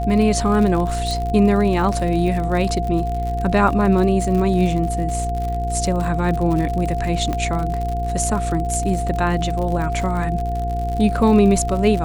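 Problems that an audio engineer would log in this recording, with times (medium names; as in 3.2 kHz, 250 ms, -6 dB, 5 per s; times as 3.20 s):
crackle 74 per s -25 dBFS
hum 60 Hz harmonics 8 -24 dBFS
whine 700 Hz -24 dBFS
1.11 s: pop
7.33 s: pop -11 dBFS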